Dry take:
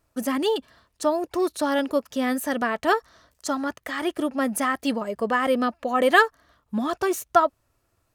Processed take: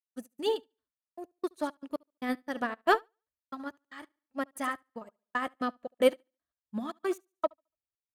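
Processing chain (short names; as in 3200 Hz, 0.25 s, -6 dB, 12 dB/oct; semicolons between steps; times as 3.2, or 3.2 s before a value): notch 5400 Hz, Q 12; in parallel at -7 dB: soft clip -19.5 dBFS, distortion -10 dB; on the sum: step gate ".x.xx.x." 115 bpm -60 dB; feedback echo 72 ms, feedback 40%, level -12 dB; upward expander 2.5:1, over -39 dBFS; gain -2.5 dB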